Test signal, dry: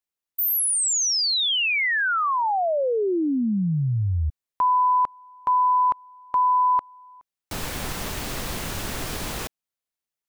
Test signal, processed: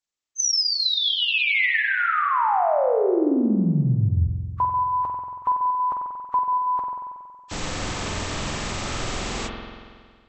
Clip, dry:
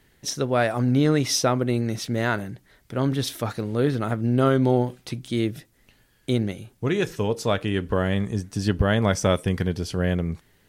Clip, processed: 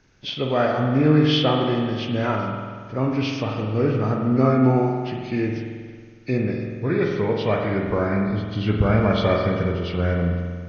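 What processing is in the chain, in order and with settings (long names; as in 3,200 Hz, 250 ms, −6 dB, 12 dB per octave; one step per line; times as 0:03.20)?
hearing-aid frequency compression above 1,100 Hz 1.5 to 1
spring reverb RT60 1.8 s, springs 46 ms, chirp 75 ms, DRR 1 dB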